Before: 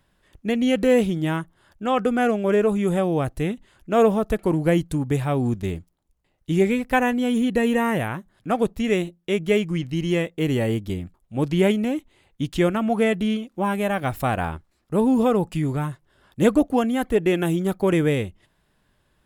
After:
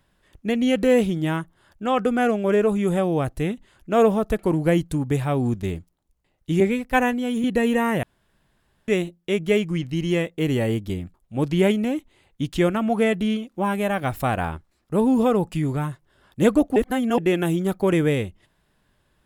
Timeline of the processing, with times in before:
0:06.60–0:07.44: multiband upward and downward expander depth 70%
0:08.03–0:08.88: fill with room tone
0:16.76–0:17.18: reverse

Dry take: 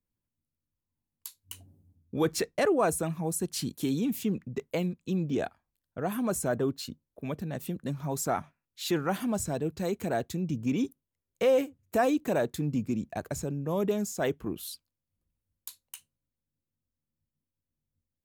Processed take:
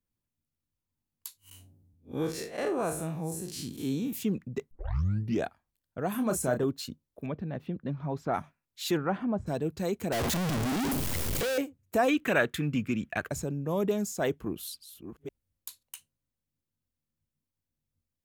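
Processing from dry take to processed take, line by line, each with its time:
0:01.37–0:04.13: spectrum smeared in time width 111 ms
0:04.71: tape start 0.72 s
0:06.11–0:06.64: double-tracking delay 31 ms −7 dB
0:07.26–0:08.34: high-frequency loss of the air 320 metres
0:08.96–0:09.46: low-pass filter 2,700 Hz → 1,000 Hz
0:10.12–0:11.58: sign of each sample alone
0:12.08–0:13.29: flat-topped bell 2,000 Hz +12.5 dB
0:14.28–0:15.83: delay that plays each chunk backwards 505 ms, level −9.5 dB

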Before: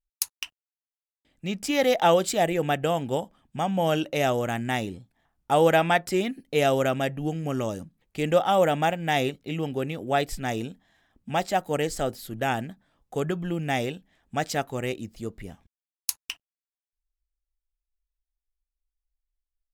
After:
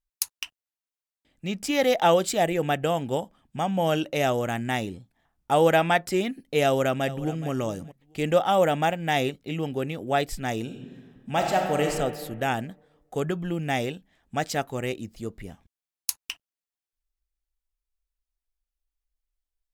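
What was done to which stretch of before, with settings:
0:06.65–0:07.49: delay throw 420 ms, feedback 15%, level −16 dB
0:10.62–0:11.87: thrown reverb, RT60 1.6 s, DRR 1.5 dB

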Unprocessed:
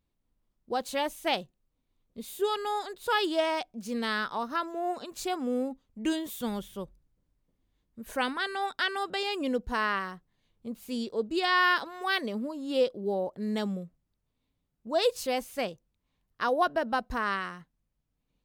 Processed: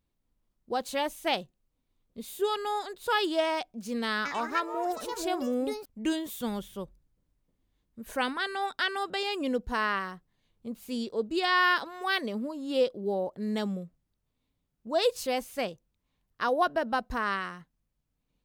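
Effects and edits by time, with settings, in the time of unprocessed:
0:04.16–0:06.30: delay with pitch and tempo change per echo 92 ms, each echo +5 semitones, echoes 2, each echo −6 dB

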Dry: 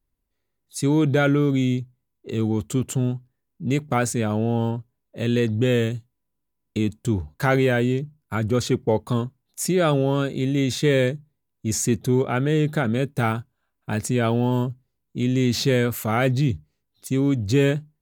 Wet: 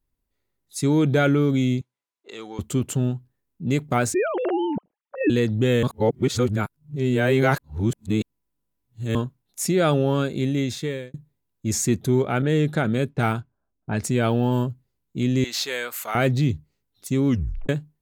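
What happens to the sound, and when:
0:01.81–0:02.59: band-pass filter 710–7,600 Hz
0:04.14–0:05.30: three sine waves on the formant tracks
0:05.83–0:09.15: reverse
0:10.45–0:11.14: fade out
0:12.42–0:14.04: low-pass that shuts in the quiet parts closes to 360 Hz, open at −18 dBFS
0:15.44–0:16.15: high-pass filter 810 Hz
0:17.28: tape stop 0.41 s

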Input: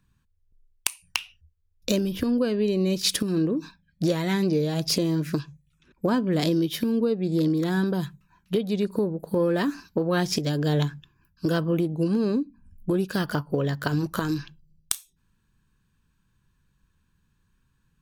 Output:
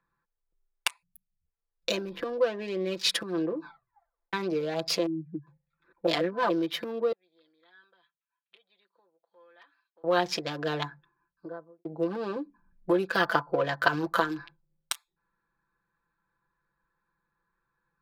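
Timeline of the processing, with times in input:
0:01.03–0:01.46: time-frequency box erased 230–11,000 Hz
0:03.63: tape stop 0.70 s
0:05.06–0:05.47: expanding power law on the bin magnitudes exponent 3.3
0:06.07–0:06.50: reverse
0:07.12–0:10.04: resonant band-pass 3,100 Hz, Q 11
0:10.78–0:11.85: fade out and dull
0:12.36–0:14.24: clip gain +3.5 dB
whole clip: adaptive Wiener filter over 15 samples; three-way crossover with the lows and the highs turned down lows −23 dB, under 460 Hz, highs −14 dB, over 4,000 Hz; comb filter 5.9 ms, depth 74%; level +2.5 dB

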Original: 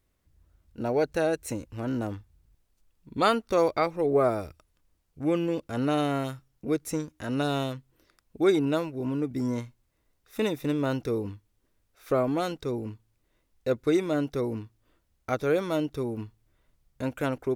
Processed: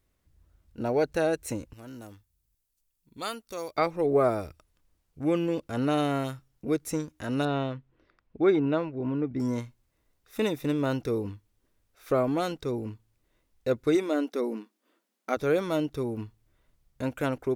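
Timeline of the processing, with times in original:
0:01.73–0:03.78: first-order pre-emphasis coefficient 0.8
0:07.45–0:09.40: low-pass filter 2,600 Hz
0:13.95–0:15.37: linear-phase brick-wall high-pass 190 Hz

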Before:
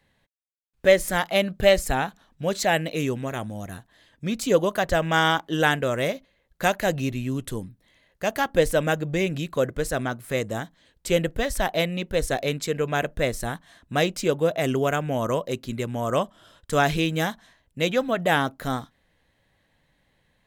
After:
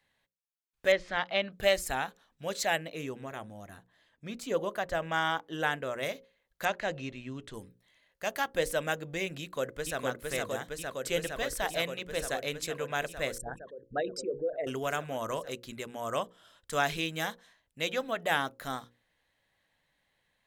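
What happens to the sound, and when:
0:00.92–0:01.52: low-pass filter 4,300 Hz 24 dB per octave
0:02.76–0:06.03: high-shelf EQ 2,300 Hz −8.5 dB
0:06.65–0:07.54: high-frequency loss of the air 120 metres
0:09.40–0:09.99: delay throw 460 ms, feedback 85%, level −2 dB
0:13.38–0:14.67: spectral envelope exaggerated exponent 3
whole clip: low-shelf EQ 460 Hz −10 dB; mains-hum notches 60/120/180/240/300/360/420/480/540 Hz; level −5 dB

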